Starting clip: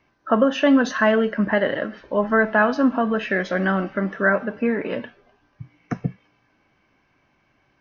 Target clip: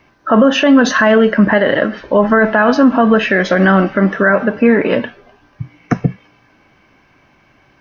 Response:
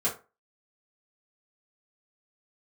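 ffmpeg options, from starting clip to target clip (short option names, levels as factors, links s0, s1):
-af "alimiter=level_in=4.73:limit=0.891:release=50:level=0:latency=1,volume=0.891"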